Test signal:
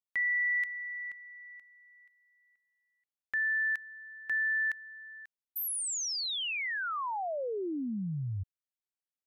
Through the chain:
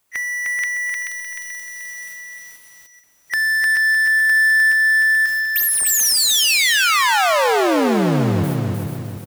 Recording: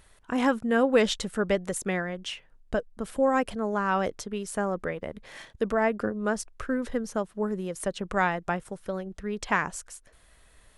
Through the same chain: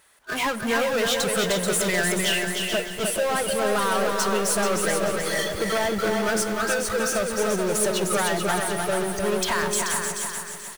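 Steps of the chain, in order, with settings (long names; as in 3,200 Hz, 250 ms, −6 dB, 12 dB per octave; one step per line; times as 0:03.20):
camcorder AGC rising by 6.6 dB per second
high-pass filter 920 Hz 6 dB per octave
noise gate −52 dBFS, range −52 dB
noise reduction from a noise print of the clip's start 19 dB
parametric band 4,300 Hz −3.5 dB 1.6 octaves
downward compressor 8 to 1, threshold −30 dBFS
power curve on the samples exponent 0.35
repeating echo 433 ms, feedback 33%, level −6.5 dB
four-comb reverb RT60 1.2 s, combs from 27 ms, DRR 17 dB
feedback echo at a low word length 305 ms, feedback 35%, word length 7 bits, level −3.5 dB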